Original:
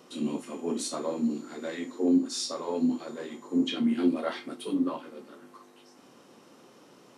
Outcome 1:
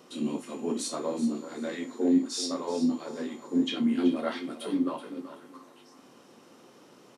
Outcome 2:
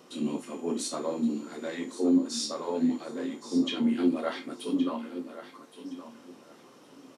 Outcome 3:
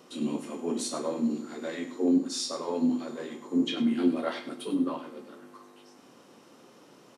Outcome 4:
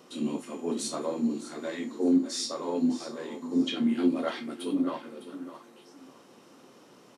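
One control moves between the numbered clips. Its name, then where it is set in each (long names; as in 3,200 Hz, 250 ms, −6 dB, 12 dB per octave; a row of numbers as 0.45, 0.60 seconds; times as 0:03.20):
repeating echo, delay time: 379, 1,118, 100, 606 milliseconds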